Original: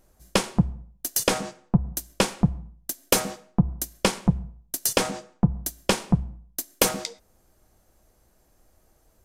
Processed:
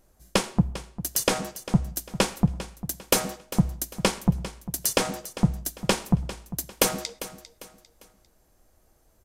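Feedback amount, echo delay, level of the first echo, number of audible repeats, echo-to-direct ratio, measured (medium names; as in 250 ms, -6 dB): 36%, 399 ms, -14.5 dB, 3, -14.0 dB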